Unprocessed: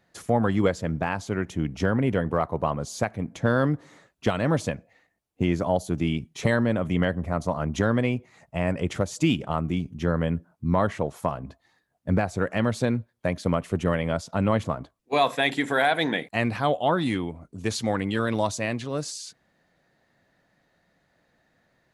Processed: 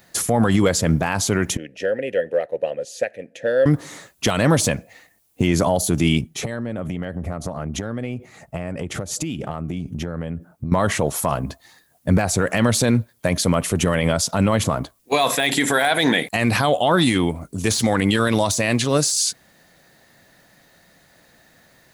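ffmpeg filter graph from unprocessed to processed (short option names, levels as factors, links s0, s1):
-filter_complex "[0:a]asettb=1/sr,asplit=3[s0][s1][s2];[s0]atrim=end=1.574[s3];[s1]atrim=start=1.57:end=3.66,asetpts=PTS-STARTPTS,afade=t=in:d=0.004:c=qsin,afade=t=out:st=2.086:d=0.004:c=qsin,asplit=3[s4][s5][s6];[s4]bandpass=f=530:t=q:w=8,volume=1[s7];[s5]bandpass=f=1840:t=q:w=8,volume=0.501[s8];[s6]bandpass=f=2480:t=q:w=8,volume=0.355[s9];[s7][s8][s9]amix=inputs=3:normalize=0,highshelf=f=5000:g=8.5[s10];[s2]atrim=start=3.656[s11];[s3][s10]acrossfade=d=0.004:c1=hsin:c2=qsin[s12];[s12][s11]acrossfade=d=0.004:c1=qsin:c2=hsin,asettb=1/sr,asplit=3[s13][s14][s15];[s13]atrim=end=6.214[s16];[s14]atrim=start=6.21:end=10.72,asetpts=PTS-STARTPTS,afade=t=in:d=0.004:c=qsin,afade=t=out:st=4.506:d=0.004:c=qsin,bandreject=f=990:w=7.4,acompressor=threshold=0.0224:ratio=16:attack=3.2:release=140:knee=1:detection=peak,highshelf=f=2100:g=-10.5[s17];[s15]atrim=start=10.716[s18];[s16][s17]acrossfade=d=0.004:c1=hsin:c2=qsin[s19];[s19][s18]acrossfade=d=0.004:c1=qsin:c2=hsin,aemphasis=mode=production:type=75kf,deesser=0.5,alimiter=level_in=7.5:limit=0.891:release=50:level=0:latency=1,volume=0.473"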